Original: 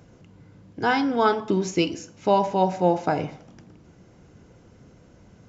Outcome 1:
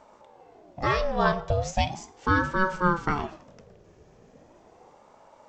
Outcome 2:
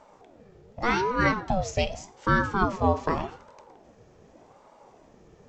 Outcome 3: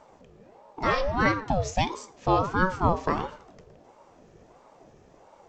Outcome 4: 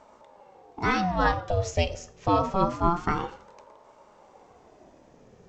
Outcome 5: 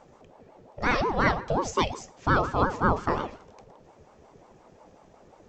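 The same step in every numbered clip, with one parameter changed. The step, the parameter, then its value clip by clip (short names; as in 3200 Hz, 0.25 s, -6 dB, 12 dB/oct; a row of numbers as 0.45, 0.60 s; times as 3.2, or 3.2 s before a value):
ring modulator with a swept carrier, at: 0.38, 0.85, 1.5, 0.26, 5.6 Hz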